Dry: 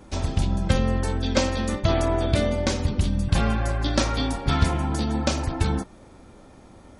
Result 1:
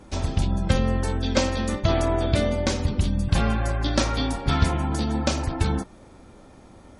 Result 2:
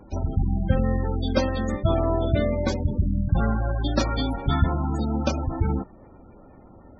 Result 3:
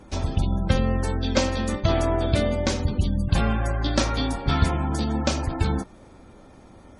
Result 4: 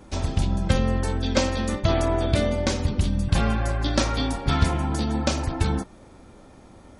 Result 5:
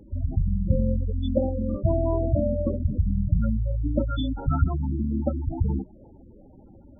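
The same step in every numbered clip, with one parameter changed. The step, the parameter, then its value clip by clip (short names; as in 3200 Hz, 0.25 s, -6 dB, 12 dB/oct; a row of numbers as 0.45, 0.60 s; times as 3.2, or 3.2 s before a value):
spectral gate, under each frame's peak: -45, -20, -35, -60, -10 dB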